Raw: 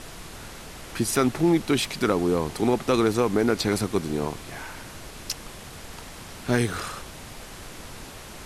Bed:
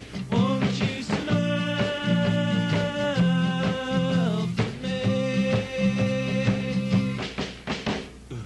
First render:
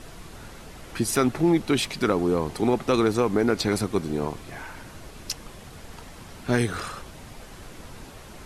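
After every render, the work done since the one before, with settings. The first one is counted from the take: denoiser 6 dB, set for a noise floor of -42 dBFS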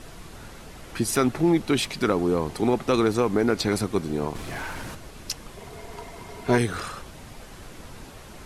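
4.35–4.95 sample leveller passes 2; 5.57–6.58 small resonant body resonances 420/680/960/2100 Hz, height 13 dB, ringing for 60 ms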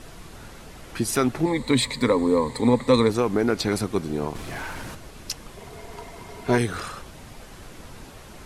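1.45–3.1 ripple EQ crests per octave 1, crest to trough 14 dB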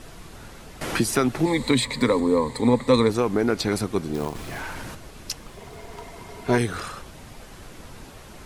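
0.81–2.2 three-band squash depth 70%; 4.14–4.6 short-mantissa float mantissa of 2-bit; 5.39–6.04 self-modulated delay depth 0.054 ms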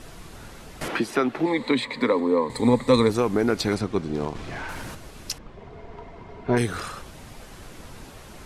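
0.88–2.5 three-band isolator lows -18 dB, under 200 Hz, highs -16 dB, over 3800 Hz; 3.75–4.69 air absorption 81 m; 5.38–6.57 tape spacing loss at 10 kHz 29 dB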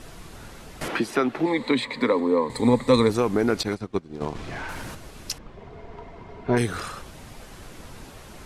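3.63–4.21 upward expander 2.5:1, over -32 dBFS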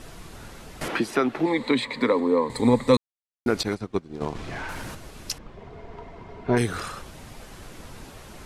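2.97–3.46 mute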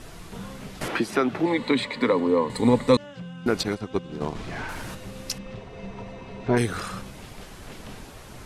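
add bed -17 dB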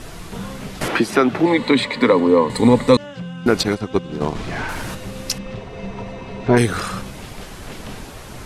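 gain +7.5 dB; limiter -2 dBFS, peak gain reduction 3 dB

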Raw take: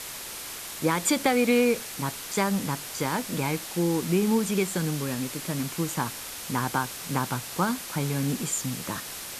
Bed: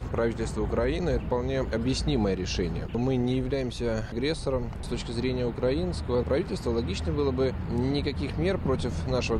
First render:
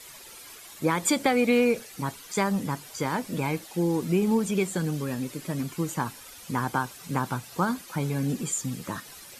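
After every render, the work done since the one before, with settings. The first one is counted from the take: denoiser 12 dB, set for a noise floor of -38 dBFS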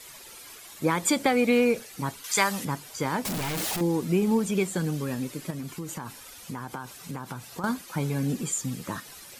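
2.24–2.65 tilt shelf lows -9 dB, about 650 Hz; 3.25–3.81 infinite clipping; 5.5–7.64 compressor, threshold -31 dBFS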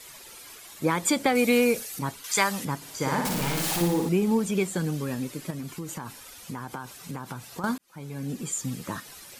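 1.35–1.99 high shelf 5300 Hz +12 dB; 2.76–4.09 flutter echo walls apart 9.9 m, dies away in 0.88 s; 7.78–8.68 fade in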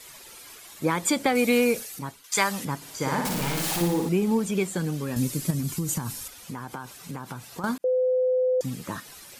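1.8–2.32 fade out, to -14.5 dB; 5.16–6.28 tone controls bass +11 dB, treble +11 dB; 7.84–8.61 bleep 509 Hz -19.5 dBFS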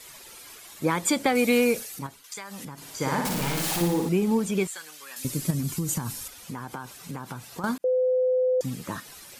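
2.06–2.78 compressor, threshold -35 dBFS; 4.67–5.25 HPF 1400 Hz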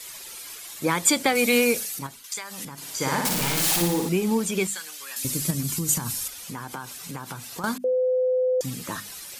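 high shelf 2000 Hz +7.5 dB; notches 50/100/150/200/250 Hz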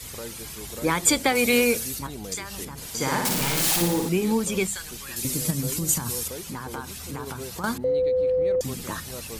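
add bed -12 dB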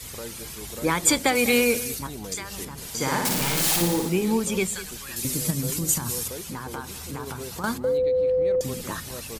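echo 0.2 s -16 dB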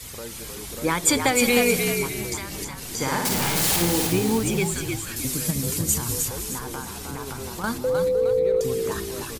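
frequency-shifting echo 0.308 s, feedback 36%, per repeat -57 Hz, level -5 dB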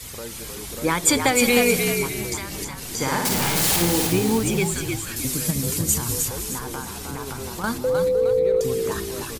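gain +1.5 dB

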